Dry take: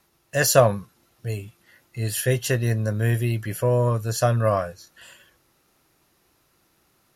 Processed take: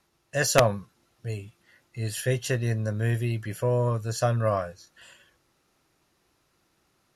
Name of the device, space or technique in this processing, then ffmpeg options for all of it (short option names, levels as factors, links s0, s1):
overflowing digital effects unit: -af "aeval=exprs='(mod(1.58*val(0)+1,2)-1)/1.58':c=same,lowpass=9500,volume=0.631"